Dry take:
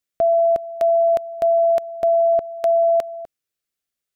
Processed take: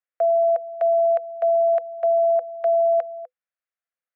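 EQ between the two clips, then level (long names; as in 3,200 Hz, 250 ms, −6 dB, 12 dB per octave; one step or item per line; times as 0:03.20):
Chebyshev high-pass with heavy ripple 490 Hz, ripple 6 dB
low-pass filter 1,300 Hz 12 dB per octave
parametric band 660 Hz −6.5 dB
+5.0 dB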